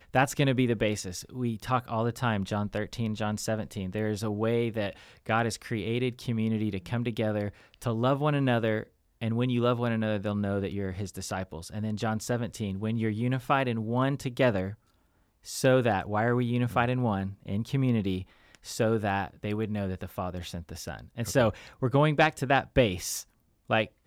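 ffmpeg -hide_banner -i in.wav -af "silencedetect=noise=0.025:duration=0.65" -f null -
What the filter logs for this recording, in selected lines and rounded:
silence_start: 14.70
silence_end: 15.49 | silence_duration: 0.79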